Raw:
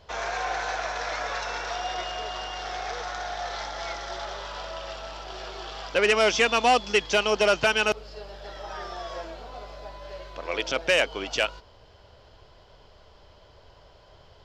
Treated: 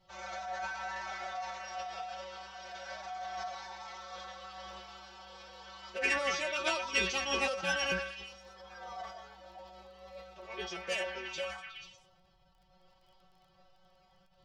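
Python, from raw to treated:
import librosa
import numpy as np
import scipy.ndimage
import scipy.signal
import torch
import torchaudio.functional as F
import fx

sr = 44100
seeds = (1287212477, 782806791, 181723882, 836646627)

y = fx.stiff_resonator(x, sr, f0_hz=140.0, decay_s=0.28, stiffness=0.002)
y = fx.echo_stepped(y, sr, ms=121, hz=1100.0, octaves=0.7, feedback_pct=70, wet_db=-3.5)
y = fx.pitch_keep_formants(y, sr, semitones=4.5)
y = fx.dmg_crackle(y, sr, seeds[0], per_s=15.0, level_db=-56.0)
y = fx.sustainer(y, sr, db_per_s=74.0)
y = y * librosa.db_to_amplitude(-1.5)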